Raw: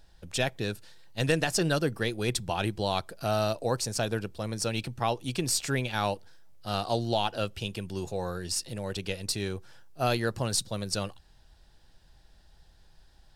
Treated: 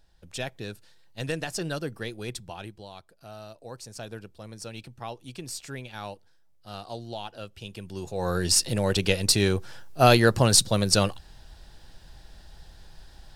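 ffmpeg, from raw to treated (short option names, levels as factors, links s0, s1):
-af "volume=11.2,afade=t=out:st=2.13:d=0.77:silence=0.281838,afade=t=in:st=3.5:d=0.61:silence=0.446684,afade=t=in:st=7.51:d=0.64:silence=0.354813,afade=t=in:st=8.15:d=0.25:silence=0.316228"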